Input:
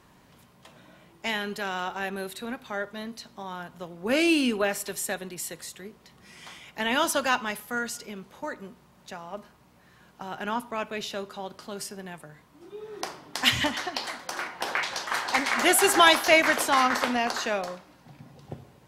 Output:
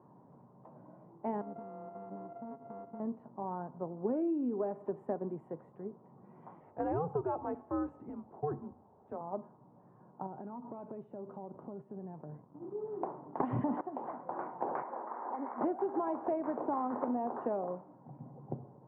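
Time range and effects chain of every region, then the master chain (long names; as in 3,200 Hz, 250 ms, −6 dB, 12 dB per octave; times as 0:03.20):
0:01.41–0:03.00: samples sorted by size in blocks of 64 samples + downward compressor 8 to 1, threshold −38 dBFS
0:06.60–0:09.21: parametric band 230 Hz +5 dB 0.94 octaves + mains-hum notches 50/100/150/200/250/300/350/400/450/500 Hz + frequency shifter −160 Hz
0:10.26–0:12.75: parametric band 1,200 Hz −6.5 dB 2.6 octaves + leveller curve on the samples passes 2 + downward compressor 16 to 1, threshold −39 dBFS
0:13.40–0:13.81: leveller curve on the samples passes 1 + envelope flattener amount 100%
0:14.82–0:15.61: Chebyshev band-pass filter 220–2,200 Hz, order 4 + downward compressor 10 to 1, threshold −31 dBFS
whole clip: elliptic band-pass filter 120–940 Hz, stop band 60 dB; dynamic equaliser 320 Hz, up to +6 dB, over −40 dBFS, Q 0.96; downward compressor 16 to 1, threshold −30 dBFS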